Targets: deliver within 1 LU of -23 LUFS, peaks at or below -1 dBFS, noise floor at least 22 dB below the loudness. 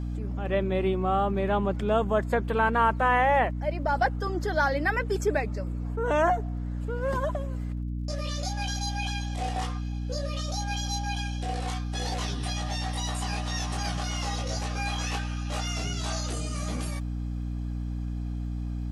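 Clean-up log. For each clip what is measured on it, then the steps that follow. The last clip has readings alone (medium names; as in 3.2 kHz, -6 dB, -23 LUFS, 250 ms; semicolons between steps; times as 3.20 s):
tick rate 37 per s; hum 60 Hz; highest harmonic 300 Hz; hum level -29 dBFS; loudness -29.0 LUFS; peak level -11.0 dBFS; loudness target -23.0 LUFS
-> de-click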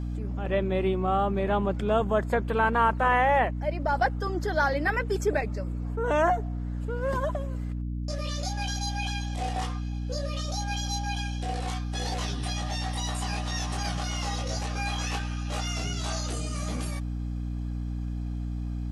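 tick rate 0 per s; hum 60 Hz; highest harmonic 300 Hz; hum level -29 dBFS
-> hum notches 60/120/180/240/300 Hz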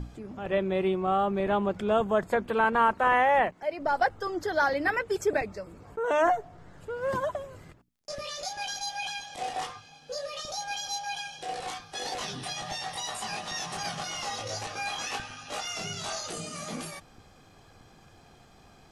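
hum not found; loudness -29.5 LUFS; peak level -10.0 dBFS; loudness target -23.0 LUFS
-> trim +6.5 dB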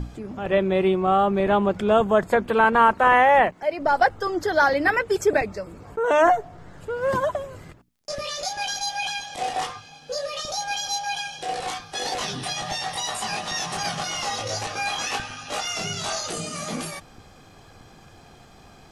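loudness -23.0 LUFS; peak level -3.5 dBFS; noise floor -50 dBFS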